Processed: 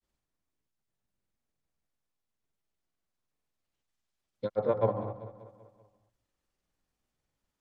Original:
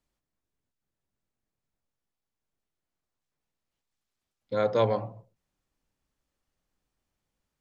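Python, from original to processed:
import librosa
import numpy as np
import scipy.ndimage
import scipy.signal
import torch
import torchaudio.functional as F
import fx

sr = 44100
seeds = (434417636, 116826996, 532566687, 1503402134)

p1 = fx.env_lowpass_down(x, sr, base_hz=1400.0, full_db=-23.5)
p2 = fx.granulator(p1, sr, seeds[0], grain_ms=100.0, per_s=20.0, spray_ms=100.0, spread_st=0)
y = p2 + fx.echo_feedback(p2, sr, ms=193, feedback_pct=53, wet_db=-14.5, dry=0)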